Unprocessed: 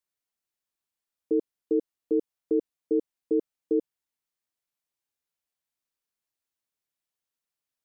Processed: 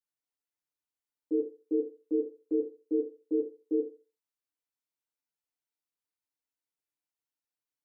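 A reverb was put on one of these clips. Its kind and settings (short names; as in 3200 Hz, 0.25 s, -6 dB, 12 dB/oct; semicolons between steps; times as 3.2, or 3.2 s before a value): FDN reverb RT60 0.35 s, low-frequency decay 0.8×, high-frequency decay 0.7×, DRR -5.5 dB; gain -13 dB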